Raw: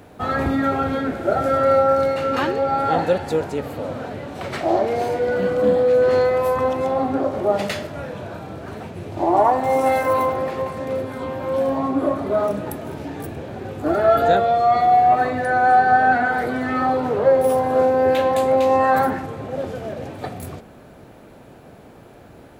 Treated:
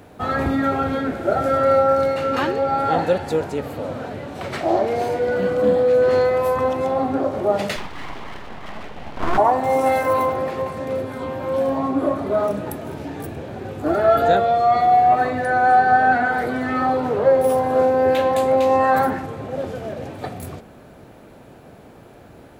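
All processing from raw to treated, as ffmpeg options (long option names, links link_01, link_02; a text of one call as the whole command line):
ffmpeg -i in.wav -filter_complex "[0:a]asettb=1/sr,asplit=3[link_01][link_02][link_03];[link_01]atrim=end=7.764[link_04];[link_02]atrim=start=7.76:end=9.38,asetpts=PTS-STARTPTS,afade=type=in:duration=0.004:curve=qsin,afade=type=out:start_time=1.616:duration=0.004:curve=qsin,highpass=200,equalizer=frequency=210:width_type=q:width=4:gain=7,equalizer=frequency=410:width_type=q:width=4:gain=7,equalizer=frequency=900:width_type=q:width=4:gain=-9,equalizer=frequency=1600:width_type=q:width=4:gain=8,equalizer=frequency=2800:width_type=q:width=4:gain=6,lowpass=frequency=4000:width=0.5412,lowpass=frequency=4000:width=1.3066,aeval=exprs='abs(val(0))':channel_layout=same[link_05];[link_03]atrim=start=9.376[link_06];[link_04][link_05]acrossfade=duration=0.004:curve1=hsin:curve2=qsin[link_07];[link_07][link_06]acrossfade=duration=0.004:curve1=qsin:curve2=hsin" out.wav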